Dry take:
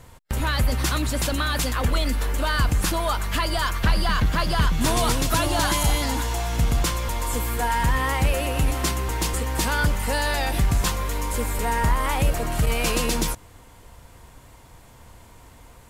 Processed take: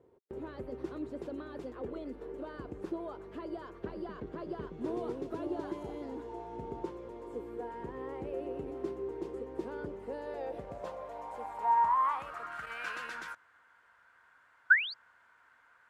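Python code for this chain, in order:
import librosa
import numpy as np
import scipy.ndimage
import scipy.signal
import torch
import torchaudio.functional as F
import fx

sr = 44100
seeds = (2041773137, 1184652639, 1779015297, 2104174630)

y = fx.spec_paint(x, sr, seeds[0], shape='rise', start_s=14.7, length_s=0.24, low_hz=1400.0, high_hz=4900.0, level_db=-18.0)
y = fx.filter_sweep_bandpass(y, sr, from_hz=390.0, to_hz=1500.0, start_s=10.09, end_s=12.68, q=6.7)
y = fx.dmg_tone(y, sr, hz=900.0, level_db=-47.0, at=(6.28, 6.89), fade=0.02)
y = y * 10.0 ** (1.5 / 20.0)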